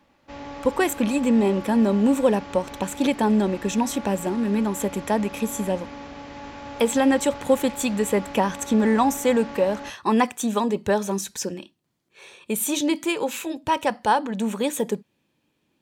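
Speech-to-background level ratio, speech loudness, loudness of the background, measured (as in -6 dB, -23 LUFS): 15.0 dB, -23.0 LUFS, -38.0 LUFS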